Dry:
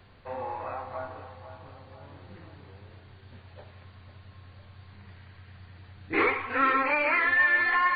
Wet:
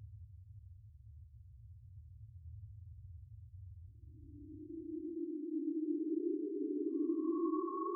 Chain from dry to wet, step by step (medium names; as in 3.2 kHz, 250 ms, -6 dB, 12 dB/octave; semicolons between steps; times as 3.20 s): loudest bins only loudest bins 1; Paulstretch 27×, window 0.05 s, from 5.93 s